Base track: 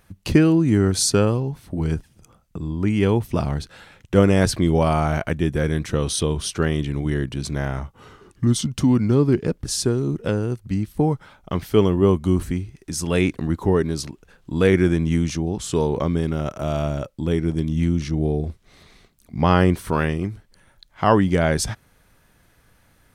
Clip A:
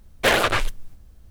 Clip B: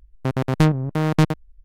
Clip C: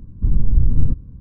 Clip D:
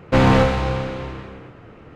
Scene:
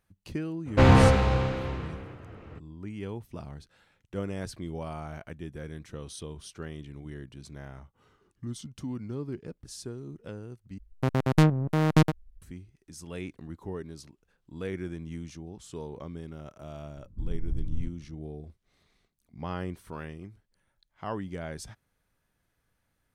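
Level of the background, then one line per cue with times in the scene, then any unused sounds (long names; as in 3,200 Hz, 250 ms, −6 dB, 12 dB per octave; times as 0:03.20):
base track −18.5 dB
0:00.65: mix in D −4.5 dB, fades 0.02 s + parametric band 83 Hz +12.5 dB 0.41 octaves
0:10.78: overwrite with B −3.5 dB
0:16.95: mix in C −16.5 dB
not used: A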